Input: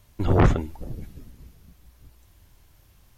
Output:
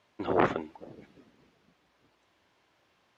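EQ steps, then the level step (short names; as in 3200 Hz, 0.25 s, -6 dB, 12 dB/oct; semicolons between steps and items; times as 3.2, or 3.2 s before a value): BPF 340–3400 Hz; -1.5 dB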